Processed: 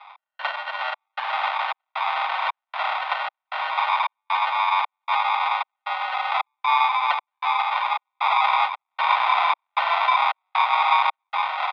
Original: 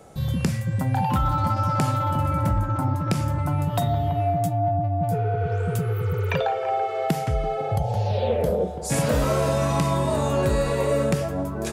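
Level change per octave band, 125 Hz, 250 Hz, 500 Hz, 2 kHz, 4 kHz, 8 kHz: under -40 dB, under -40 dB, -14.0 dB, +11.0 dB, +8.5 dB, under -20 dB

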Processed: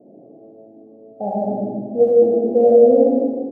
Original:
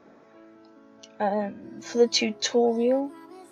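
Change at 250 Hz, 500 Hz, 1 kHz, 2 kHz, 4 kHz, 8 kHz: +8.0 dB, +11.5 dB, +4.5 dB, under -25 dB, under -35 dB, n/a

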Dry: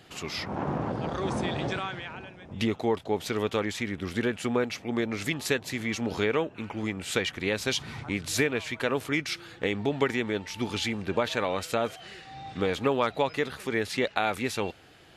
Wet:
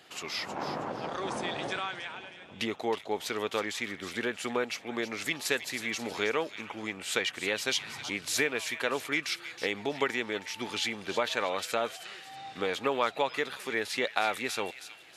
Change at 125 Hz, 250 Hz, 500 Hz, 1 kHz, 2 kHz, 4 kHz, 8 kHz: -13.5, -7.5, -4.0, -1.5, 0.0, +0.5, +0.5 dB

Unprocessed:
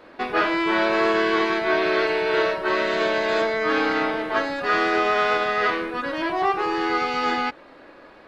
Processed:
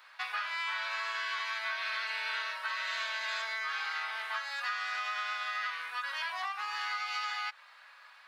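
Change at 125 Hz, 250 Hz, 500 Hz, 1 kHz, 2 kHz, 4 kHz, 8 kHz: under -40 dB, under -40 dB, -31.5 dB, -13.5 dB, -9.5 dB, -6.5 dB, n/a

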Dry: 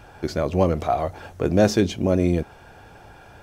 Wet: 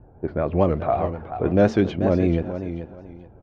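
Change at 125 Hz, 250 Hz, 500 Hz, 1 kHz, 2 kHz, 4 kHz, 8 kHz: +0.5 dB, +0.5 dB, +0.5 dB, -0.5 dB, -1.5 dB, -8.5 dB, under -15 dB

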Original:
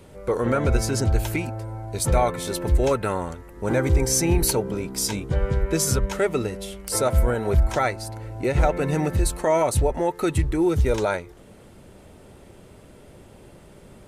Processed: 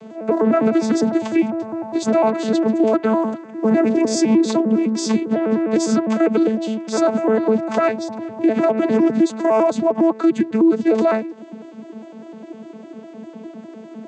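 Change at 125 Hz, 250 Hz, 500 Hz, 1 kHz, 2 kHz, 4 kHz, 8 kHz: -9.5, +11.5, +6.0, +3.5, +1.0, -0.5, -6.0 dB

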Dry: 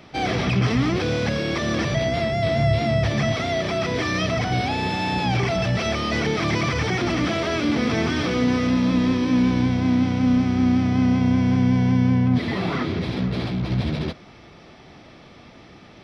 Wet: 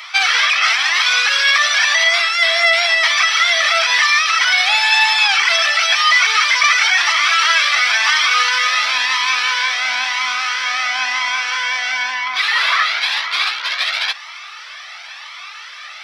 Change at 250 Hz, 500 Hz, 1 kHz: under -35 dB, -5.5 dB, +9.5 dB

